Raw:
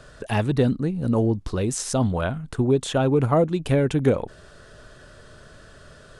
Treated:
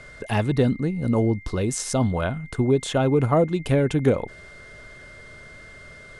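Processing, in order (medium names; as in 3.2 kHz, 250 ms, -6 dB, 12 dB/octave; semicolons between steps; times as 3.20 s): whistle 2.1 kHz -44 dBFS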